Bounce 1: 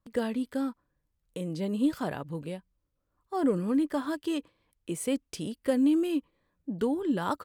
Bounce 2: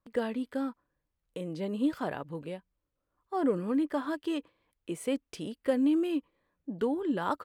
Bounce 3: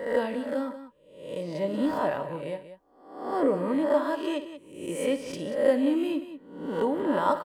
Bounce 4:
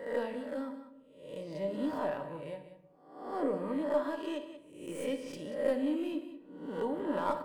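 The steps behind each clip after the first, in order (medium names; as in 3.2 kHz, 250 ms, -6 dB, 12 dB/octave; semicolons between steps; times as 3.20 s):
tone controls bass -6 dB, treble -8 dB
reverse spectral sustain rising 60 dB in 0.70 s; small resonant body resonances 590/950/1900 Hz, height 11 dB, ringing for 50 ms; on a send: multi-tap echo 57/186 ms -12.5/-12.5 dB
tracing distortion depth 0.038 ms; simulated room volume 280 m³, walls mixed, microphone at 0.39 m; trim -8.5 dB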